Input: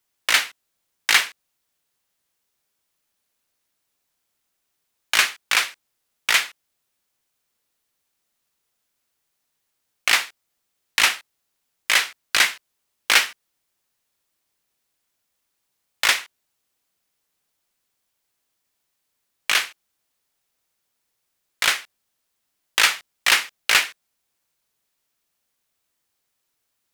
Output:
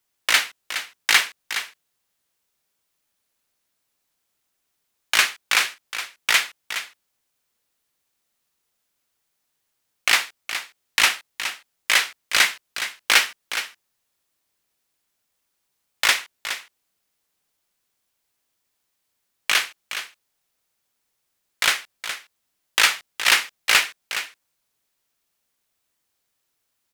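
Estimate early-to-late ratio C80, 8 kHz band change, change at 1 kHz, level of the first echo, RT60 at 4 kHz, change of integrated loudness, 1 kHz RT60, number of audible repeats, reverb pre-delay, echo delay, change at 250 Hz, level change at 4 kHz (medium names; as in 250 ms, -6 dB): no reverb, +0.5 dB, +0.5 dB, -10.5 dB, no reverb, -1.5 dB, no reverb, 1, no reverb, 417 ms, +0.5 dB, +0.5 dB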